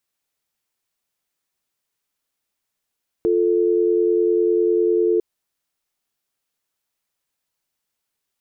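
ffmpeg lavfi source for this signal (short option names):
-f lavfi -i "aevalsrc='0.133*(sin(2*PI*350*t)+sin(2*PI*440*t))':d=1.95:s=44100"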